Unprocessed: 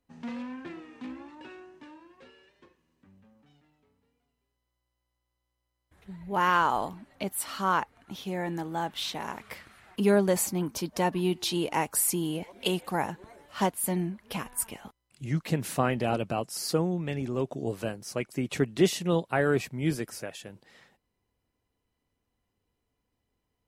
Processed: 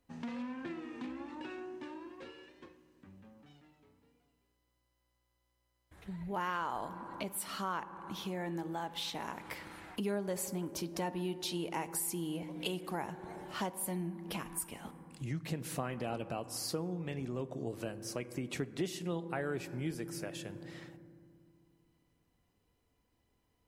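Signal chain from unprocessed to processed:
on a send at −14 dB: convolution reverb RT60 2.1 s, pre-delay 3 ms
on the sum: downward compressor 2.5 to 1, threshold −44 dBFS, peak gain reduction 18 dB
level +3 dB

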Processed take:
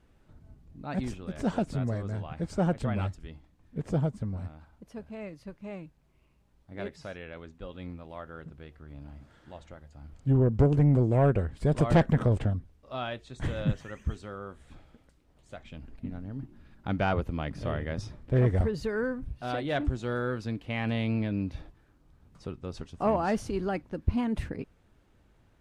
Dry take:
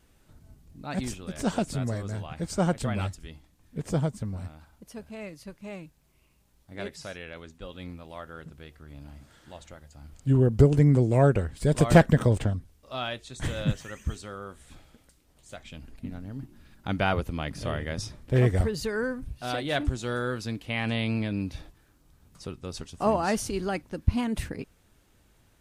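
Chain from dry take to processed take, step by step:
low-pass filter 1,700 Hz 6 dB per octave
soft clipping −15 dBFS, distortion −13 dB

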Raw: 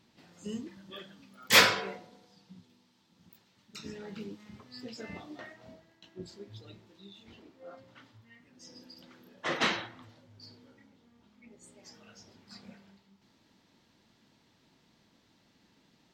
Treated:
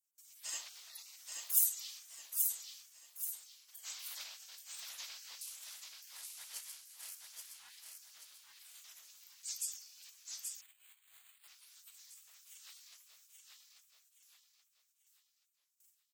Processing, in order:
0:05.41–0:07.15: variable-slope delta modulation 64 kbit/s
gate on every frequency bin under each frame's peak −30 dB weak
spectral tilt +4.5 dB per octave
noise gate with hold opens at −60 dBFS
repeating echo 830 ms, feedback 40%, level −4 dB
0:10.61–0:11.49: bad sample-rate conversion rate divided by 8×, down filtered, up zero stuff
wow of a warped record 45 rpm, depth 160 cents
level +5 dB

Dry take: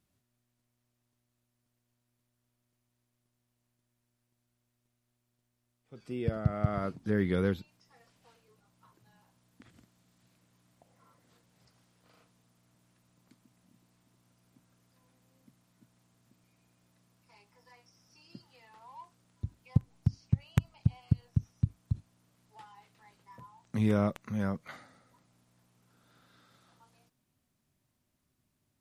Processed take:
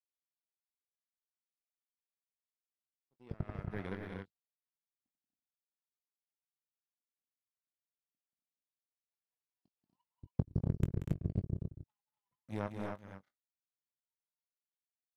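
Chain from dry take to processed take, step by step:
tempo change 1.9×
power curve on the samples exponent 2
double-tracking delay 21 ms −12.5 dB
loudspeakers that aren't time-aligned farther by 63 metres −8 dB, 83 metres −7 dB, 94 metres −5 dB
level −3.5 dB

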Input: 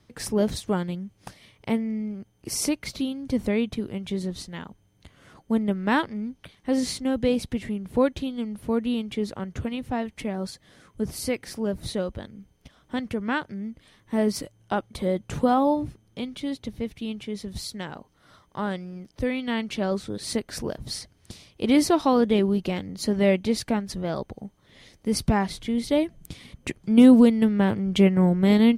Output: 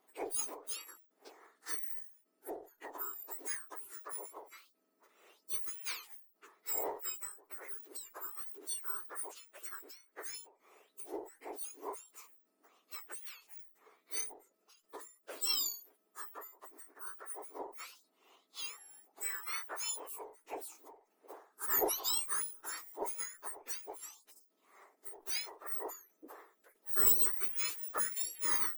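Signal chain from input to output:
frequency axis turned over on the octave scale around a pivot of 2,000 Hz
harmonic generator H 2 −18 dB, 6 −42 dB, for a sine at −9 dBFS
every ending faded ahead of time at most 130 dB per second
level −6.5 dB

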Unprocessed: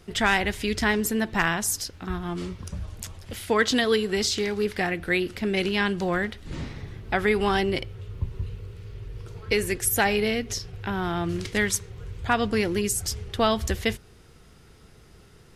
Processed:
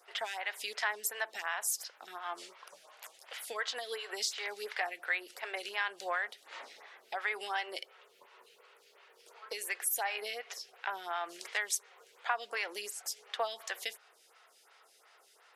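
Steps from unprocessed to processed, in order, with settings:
high-pass filter 630 Hz 24 dB per octave
downward compressor 3 to 1, threshold −30 dBFS, peak gain reduction 10 dB
phaser with staggered stages 2.8 Hz

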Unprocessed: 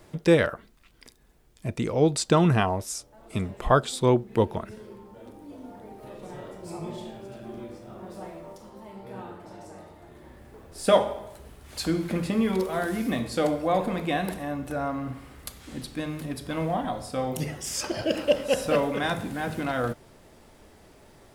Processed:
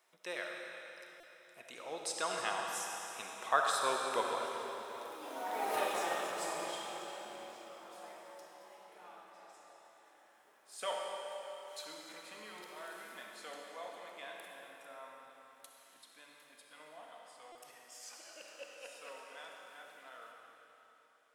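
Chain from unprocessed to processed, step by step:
source passing by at 0:05.72, 17 m/s, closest 2.8 metres
high-pass filter 930 Hz 12 dB per octave
notch filter 4,600 Hz, Q 15
convolution reverb RT60 3.7 s, pre-delay 20 ms, DRR 0 dB
buffer that repeats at 0:01.20/0:17.52, samples 128, times 10
level +17 dB

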